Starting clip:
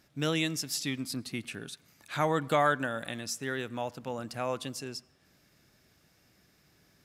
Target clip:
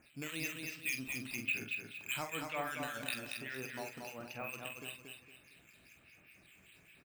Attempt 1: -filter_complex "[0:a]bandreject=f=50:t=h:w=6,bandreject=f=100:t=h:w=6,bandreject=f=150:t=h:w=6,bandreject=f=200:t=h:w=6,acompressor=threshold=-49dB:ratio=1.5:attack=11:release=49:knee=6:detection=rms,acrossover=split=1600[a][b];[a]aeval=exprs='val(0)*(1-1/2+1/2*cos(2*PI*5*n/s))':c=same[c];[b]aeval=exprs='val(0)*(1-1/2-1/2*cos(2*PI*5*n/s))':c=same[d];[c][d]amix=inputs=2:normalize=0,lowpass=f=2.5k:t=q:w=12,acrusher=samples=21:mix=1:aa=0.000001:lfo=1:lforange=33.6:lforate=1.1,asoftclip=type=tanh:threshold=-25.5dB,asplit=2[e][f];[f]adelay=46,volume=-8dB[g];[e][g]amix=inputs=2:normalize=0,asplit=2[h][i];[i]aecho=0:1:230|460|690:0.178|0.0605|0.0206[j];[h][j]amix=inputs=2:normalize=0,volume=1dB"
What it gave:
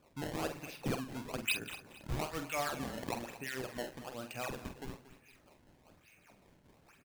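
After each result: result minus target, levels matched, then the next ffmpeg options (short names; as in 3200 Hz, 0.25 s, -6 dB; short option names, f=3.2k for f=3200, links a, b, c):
decimation with a swept rate: distortion +11 dB; echo-to-direct -10.5 dB; compressor: peak gain reduction -3.5 dB
-filter_complex "[0:a]bandreject=f=50:t=h:w=6,bandreject=f=100:t=h:w=6,bandreject=f=150:t=h:w=6,bandreject=f=200:t=h:w=6,acompressor=threshold=-49dB:ratio=1.5:attack=11:release=49:knee=6:detection=rms,acrossover=split=1600[a][b];[a]aeval=exprs='val(0)*(1-1/2+1/2*cos(2*PI*5*n/s))':c=same[c];[b]aeval=exprs='val(0)*(1-1/2-1/2*cos(2*PI*5*n/s))':c=same[d];[c][d]amix=inputs=2:normalize=0,lowpass=f=2.5k:t=q:w=12,acrusher=samples=5:mix=1:aa=0.000001:lfo=1:lforange=8:lforate=1.1,asoftclip=type=tanh:threshold=-25.5dB,asplit=2[e][f];[f]adelay=46,volume=-8dB[g];[e][g]amix=inputs=2:normalize=0,asplit=2[h][i];[i]aecho=0:1:230|460|690:0.178|0.0605|0.0206[j];[h][j]amix=inputs=2:normalize=0,volume=1dB"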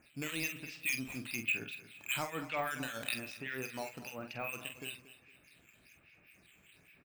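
echo-to-direct -10.5 dB; compressor: peak gain reduction -3.5 dB
-filter_complex "[0:a]bandreject=f=50:t=h:w=6,bandreject=f=100:t=h:w=6,bandreject=f=150:t=h:w=6,bandreject=f=200:t=h:w=6,acompressor=threshold=-49dB:ratio=1.5:attack=11:release=49:knee=6:detection=rms,acrossover=split=1600[a][b];[a]aeval=exprs='val(0)*(1-1/2+1/2*cos(2*PI*5*n/s))':c=same[c];[b]aeval=exprs='val(0)*(1-1/2-1/2*cos(2*PI*5*n/s))':c=same[d];[c][d]amix=inputs=2:normalize=0,lowpass=f=2.5k:t=q:w=12,acrusher=samples=5:mix=1:aa=0.000001:lfo=1:lforange=8:lforate=1.1,asoftclip=type=tanh:threshold=-25.5dB,asplit=2[e][f];[f]adelay=46,volume=-8dB[g];[e][g]amix=inputs=2:normalize=0,asplit=2[h][i];[i]aecho=0:1:230|460|690|920:0.596|0.203|0.0689|0.0234[j];[h][j]amix=inputs=2:normalize=0,volume=1dB"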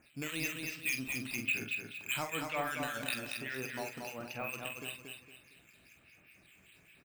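compressor: peak gain reduction -3.5 dB
-filter_complex "[0:a]bandreject=f=50:t=h:w=6,bandreject=f=100:t=h:w=6,bandreject=f=150:t=h:w=6,bandreject=f=200:t=h:w=6,acompressor=threshold=-60dB:ratio=1.5:attack=11:release=49:knee=6:detection=rms,acrossover=split=1600[a][b];[a]aeval=exprs='val(0)*(1-1/2+1/2*cos(2*PI*5*n/s))':c=same[c];[b]aeval=exprs='val(0)*(1-1/2-1/2*cos(2*PI*5*n/s))':c=same[d];[c][d]amix=inputs=2:normalize=0,lowpass=f=2.5k:t=q:w=12,acrusher=samples=5:mix=1:aa=0.000001:lfo=1:lforange=8:lforate=1.1,asoftclip=type=tanh:threshold=-25.5dB,asplit=2[e][f];[f]adelay=46,volume=-8dB[g];[e][g]amix=inputs=2:normalize=0,asplit=2[h][i];[i]aecho=0:1:230|460|690|920:0.596|0.203|0.0689|0.0234[j];[h][j]amix=inputs=2:normalize=0,volume=1dB"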